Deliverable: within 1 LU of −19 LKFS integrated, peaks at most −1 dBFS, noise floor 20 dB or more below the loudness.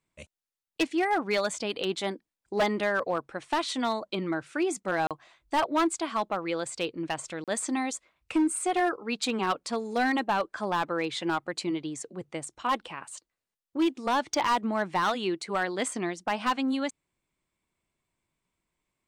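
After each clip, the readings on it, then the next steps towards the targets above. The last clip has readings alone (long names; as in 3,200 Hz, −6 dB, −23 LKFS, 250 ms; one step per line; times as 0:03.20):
share of clipped samples 1.3%; peaks flattened at −20.0 dBFS; number of dropouts 2; longest dropout 37 ms; integrated loudness −29.5 LKFS; sample peak −20.0 dBFS; target loudness −19.0 LKFS
→ clipped peaks rebuilt −20 dBFS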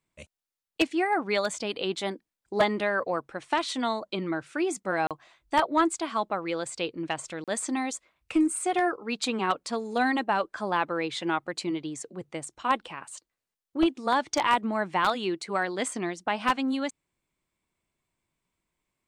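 share of clipped samples 0.0%; number of dropouts 2; longest dropout 37 ms
→ repair the gap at 0:05.07/0:07.44, 37 ms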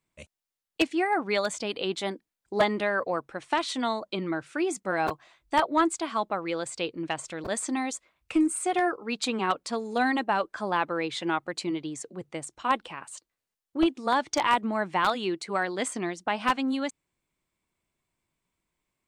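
number of dropouts 0; integrated loudness −28.5 LKFS; sample peak −11.0 dBFS; target loudness −19.0 LKFS
→ level +9.5 dB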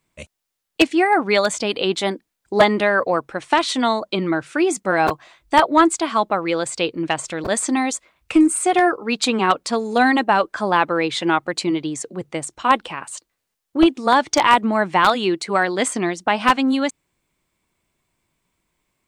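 integrated loudness −19.0 LKFS; sample peak −1.5 dBFS; background noise floor −78 dBFS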